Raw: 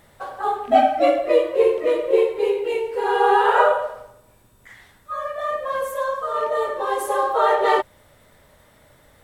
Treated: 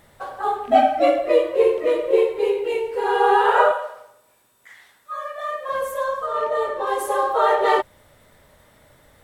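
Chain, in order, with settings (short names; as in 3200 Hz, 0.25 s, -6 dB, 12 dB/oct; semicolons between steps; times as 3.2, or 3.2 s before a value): 1.78–2.85 requantised 12-bit, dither none; 3.71–5.69 HPF 810 Hz 6 dB/oct; 6.26–6.87 high shelf 7800 Hz -6.5 dB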